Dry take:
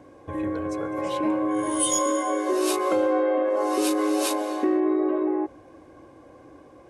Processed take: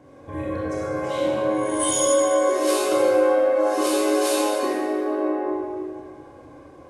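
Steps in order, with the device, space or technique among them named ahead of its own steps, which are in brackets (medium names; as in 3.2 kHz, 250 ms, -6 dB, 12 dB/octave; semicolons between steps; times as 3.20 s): stairwell (reverberation RT60 2.0 s, pre-delay 24 ms, DRR -6 dB); trim -3 dB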